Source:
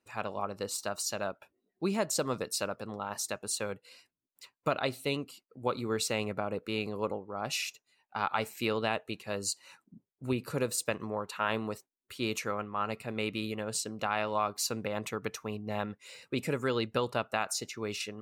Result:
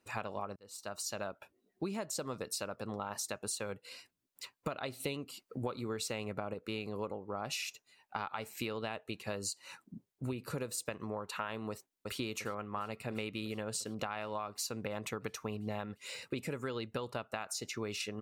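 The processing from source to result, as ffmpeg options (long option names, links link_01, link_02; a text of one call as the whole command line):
ffmpeg -i in.wav -filter_complex "[0:a]asettb=1/sr,asplit=3[link_01][link_02][link_03];[link_01]atrim=end=5.004[link_04];[link_02]atrim=start=5:end=6.54,asetpts=PTS-STARTPTS,afade=type=in:duration=0.004:curve=qsin,afade=type=out:start_time=1.536:duration=0.004:curve=qsin,acontrast=35[link_05];[link_03]atrim=start=6.536[link_06];[link_04][link_05]acrossfade=duration=0.004:curve1=hsin:curve2=qsin[link_07];[link_07][link_06]acrossfade=duration=0.004:curve1=qsin:curve2=hsin,asplit=2[link_08][link_09];[link_09]afade=type=in:start_time=11.7:duration=0.01,afade=type=out:start_time=12.19:duration=0.01,aecho=0:1:350|700|1050|1400|1750|2100|2450|2800|3150|3500|3850|4200:0.375837|0.30067|0.240536|0.192429|0.153943|0.123154|0.0985235|0.0788188|0.0630551|0.050444|0.0403552|0.0322842[link_10];[link_08][link_10]amix=inputs=2:normalize=0,asplit=2[link_11][link_12];[link_11]atrim=end=0.56,asetpts=PTS-STARTPTS,afade=type=out:start_time=0.556:duration=0.004:curve=hsin[link_13];[link_12]atrim=start=0.56,asetpts=PTS-STARTPTS,afade=type=in:duration=1.3[link_14];[link_13][link_14]concat=n=2:v=0:a=1,equalizer=frequency=85:width=1.5:gain=2,acompressor=threshold=-40dB:ratio=10,volume=5dB" out.wav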